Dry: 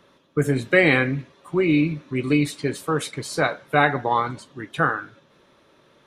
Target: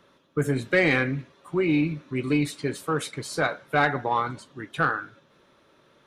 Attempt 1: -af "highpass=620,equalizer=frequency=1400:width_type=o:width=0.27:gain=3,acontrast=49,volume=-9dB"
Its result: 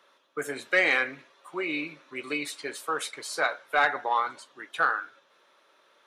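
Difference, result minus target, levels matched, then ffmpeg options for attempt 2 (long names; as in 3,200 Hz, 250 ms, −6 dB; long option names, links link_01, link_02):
500 Hz band −3.0 dB
-af "equalizer=frequency=1400:width_type=o:width=0.27:gain=3,acontrast=49,volume=-9dB"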